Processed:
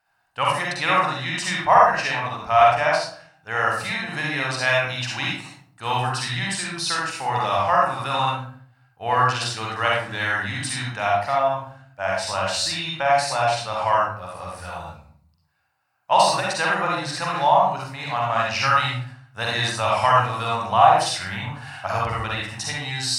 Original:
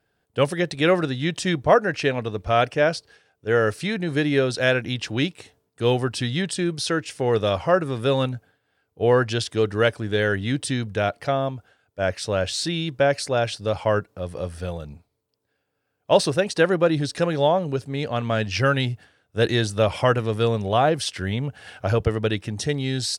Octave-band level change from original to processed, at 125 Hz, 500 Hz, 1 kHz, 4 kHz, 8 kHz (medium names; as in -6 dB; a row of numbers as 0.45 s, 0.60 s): -5.0 dB, -4.0 dB, +8.5 dB, +2.5 dB, +3.0 dB